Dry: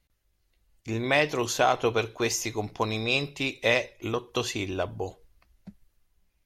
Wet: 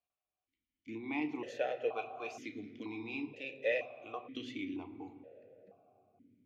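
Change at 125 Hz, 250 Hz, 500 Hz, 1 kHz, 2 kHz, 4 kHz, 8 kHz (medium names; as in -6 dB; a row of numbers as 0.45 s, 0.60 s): -22.5 dB, -8.0 dB, -11.0 dB, -15.0 dB, -13.5 dB, -20.0 dB, under -25 dB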